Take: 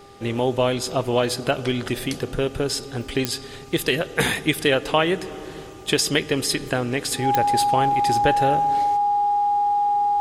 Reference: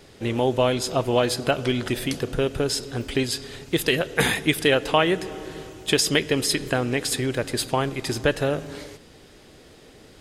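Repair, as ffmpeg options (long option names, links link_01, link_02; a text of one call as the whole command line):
ffmpeg -i in.wav -af "adeclick=threshold=4,bandreject=frequency=399.7:width_type=h:width=4,bandreject=frequency=799.4:width_type=h:width=4,bandreject=frequency=1199.1:width_type=h:width=4,bandreject=frequency=820:width=30" out.wav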